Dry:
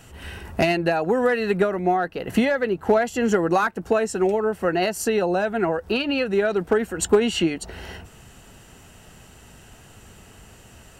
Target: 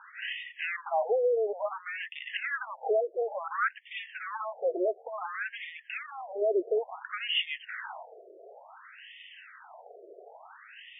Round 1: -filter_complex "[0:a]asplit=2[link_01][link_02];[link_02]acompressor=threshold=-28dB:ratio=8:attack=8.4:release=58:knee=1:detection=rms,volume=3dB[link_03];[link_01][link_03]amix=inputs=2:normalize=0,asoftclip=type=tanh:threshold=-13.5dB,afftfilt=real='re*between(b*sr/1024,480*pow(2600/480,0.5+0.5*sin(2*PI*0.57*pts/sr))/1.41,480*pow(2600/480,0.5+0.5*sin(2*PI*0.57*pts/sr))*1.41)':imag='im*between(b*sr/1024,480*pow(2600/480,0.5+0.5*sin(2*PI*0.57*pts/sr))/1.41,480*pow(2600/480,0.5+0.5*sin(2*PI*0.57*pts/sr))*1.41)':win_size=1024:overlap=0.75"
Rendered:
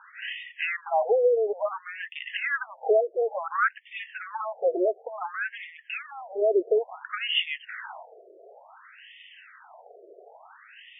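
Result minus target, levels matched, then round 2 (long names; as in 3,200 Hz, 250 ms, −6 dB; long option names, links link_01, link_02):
soft clipping: distortion −7 dB
-filter_complex "[0:a]asplit=2[link_01][link_02];[link_02]acompressor=threshold=-28dB:ratio=8:attack=8.4:release=58:knee=1:detection=rms,volume=3dB[link_03];[link_01][link_03]amix=inputs=2:normalize=0,asoftclip=type=tanh:threshold=-21.5dB,afftfilt=real='re*between(b*sr/1024,480*pow(2600/480,0.5+0.5*sin(2*PI*0.57*pts/sr))/1.41,480*pow(2600/480,0.5+0.5*sin(2*PI*0.57*pts/sr))*1.41)':imag='im*between(b*sr/1024,480*pow(2600/480,0.5+0.5*sin(2*PI*0.57*pts/sr))/1.41,480*pow(2600/480,0.5+0.5*sin(2*PI*0.57*pts/sr))*1.41)':win_size=1024:overlap=0.75"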